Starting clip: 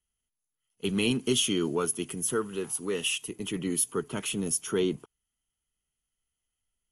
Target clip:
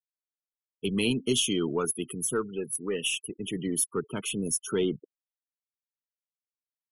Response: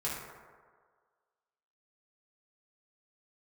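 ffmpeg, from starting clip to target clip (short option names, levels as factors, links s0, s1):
-af "afftfilt=real='re*gte(hypot(re,im),0.0158)':imag='im*gte(hypot(re,im),0.0158)':win_size=1024:overlap=0.75,aeval=exprs='0.224*(cos(1*acos(clip(val(0)/0.224,-1,1)))-cos(1*PI/2))+0.00158*(cos(8*acos(clip(val(0)/0.224,-1,1)))-cos(8*PI/2))':c=same"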